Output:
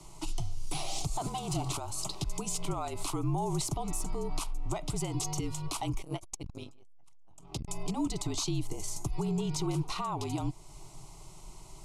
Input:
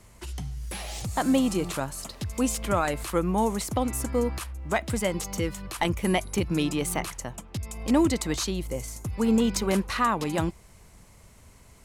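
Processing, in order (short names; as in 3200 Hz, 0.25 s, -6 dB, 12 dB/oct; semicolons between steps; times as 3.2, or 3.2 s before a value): 1.26–1.7 minimum comb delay 1 ms; LPF 9000 Hz 12 dB/oct; bell 73 Hz +4.5 dB 0.8 oct; in parallel at +0.5 dB: compressor 6:1, threshold -38 dBFS, peak gain reduction 19 dB; on the sum: limiter -22 dBFS, peak gain reduction 11.5 dB; frequency shift -44 Hz; fixed phaser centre 340 Hz, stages 8; 6.02–7.68 core saturation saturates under 280 Hz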